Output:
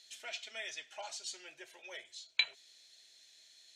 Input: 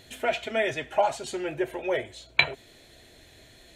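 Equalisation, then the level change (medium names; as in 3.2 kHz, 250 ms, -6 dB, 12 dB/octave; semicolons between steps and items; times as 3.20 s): band-pass filter 5.4 kHz, Q 2.3; +1.5 dB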